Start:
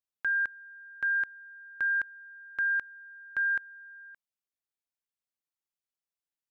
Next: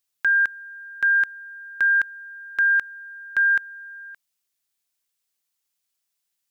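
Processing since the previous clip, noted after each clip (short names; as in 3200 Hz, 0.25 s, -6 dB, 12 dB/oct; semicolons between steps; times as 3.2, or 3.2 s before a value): high shelf 2100 Hz +11.5 dB; gain +5 dB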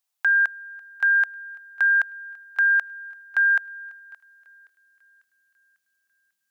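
thinning echo 0.546 s, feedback 51%, high-pass 420 Hz, level -24 dB; high-pass sweep 760 Hz -> 180 Hz, 4.3–5.11; gain -2 dB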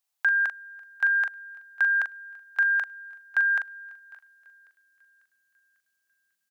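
doubler 41 ms -7.5 dB; gain -1.5 dB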